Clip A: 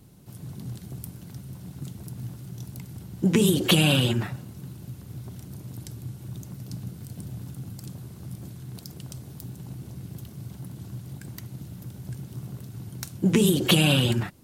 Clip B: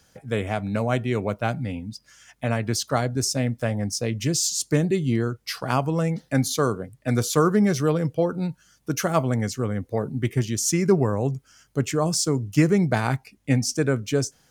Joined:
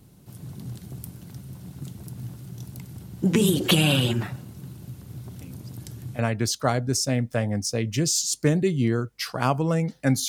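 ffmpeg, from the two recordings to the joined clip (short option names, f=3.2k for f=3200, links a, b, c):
-filter_complex "[1:a]asplit=2[a][b];[0:a]apad=whole_dur=10.28,atrim=end=10.28,atrim=end=6.192[c];[b]atrim=start=2.468:end=6.56[d];[a]atrim=start=1.69:end=2.47,asetpts=PTS-STARTPTS,volume=-13.5dB,afade=t=in:d=0.004:c=hsin,afade=t=out:st=0.776:d=0.004:c=hsin,adelay=238581S[e];[c][d]acrossfade=d=0.004:c1=hsin:c2=hsin[f];[f][e]amix=inputs=2:normalize=0"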